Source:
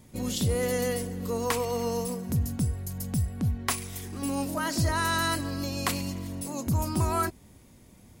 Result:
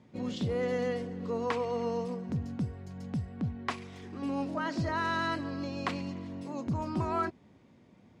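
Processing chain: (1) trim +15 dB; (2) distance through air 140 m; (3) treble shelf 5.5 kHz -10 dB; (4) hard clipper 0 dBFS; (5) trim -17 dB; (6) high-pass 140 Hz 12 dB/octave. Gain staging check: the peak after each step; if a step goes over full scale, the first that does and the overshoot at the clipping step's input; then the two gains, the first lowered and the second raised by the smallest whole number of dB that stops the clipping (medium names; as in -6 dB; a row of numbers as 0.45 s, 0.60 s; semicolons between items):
-1.5 dBFS, -2.5 dBFS, -3.0 dBFS, -3.0 dBFS, -20.0 dBFS, -19.0 dBFS; nothing clips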